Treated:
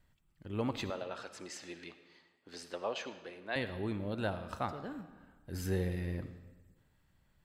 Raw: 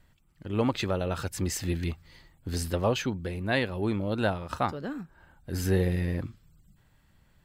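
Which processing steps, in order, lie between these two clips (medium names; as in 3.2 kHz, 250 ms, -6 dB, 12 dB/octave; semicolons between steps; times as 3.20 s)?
0.90–3.56 s: band-pass 440–5700 Hz; reverberation RT60 1.3 s, pre-delay 25 ms, DRR 11 dB; trim -8.5 dB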